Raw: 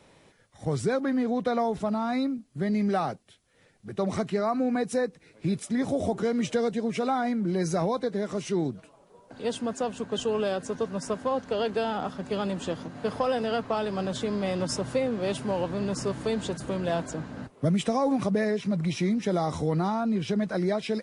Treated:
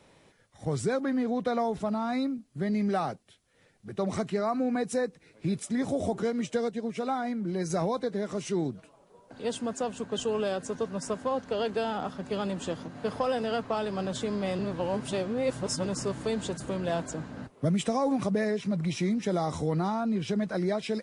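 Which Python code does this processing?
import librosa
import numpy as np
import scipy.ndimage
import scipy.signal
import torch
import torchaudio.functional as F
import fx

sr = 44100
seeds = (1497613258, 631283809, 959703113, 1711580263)

y = fx.upward_expand(x, sr, threshold_db=-39.0, expansion=1.5, at=(6.3, 7.7))
y = fx.edit(y, sr, fx.reverse_span(start_s=14.59, length_s=1.27), tone=tone)
y = fx.dynamic_eq(y, sr, hz=7700.0, q=2.0, threshold_db=-53.0, ratio=4.0, max_db=4)
y = y * librosa.db_to_amplitude(-2.0)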